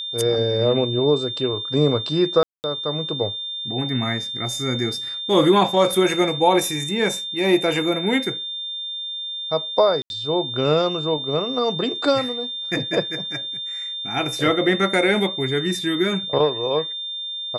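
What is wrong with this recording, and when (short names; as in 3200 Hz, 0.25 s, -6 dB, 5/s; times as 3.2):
tone 3600 Hz -27 dBFS
2.43–2.64 gap 0.209 s
10.02–10.1 gap 81 ms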